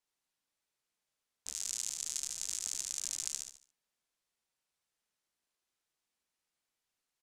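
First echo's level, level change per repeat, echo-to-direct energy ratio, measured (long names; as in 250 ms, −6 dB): −5.0 dB, −10.0 dB, −4.5 dB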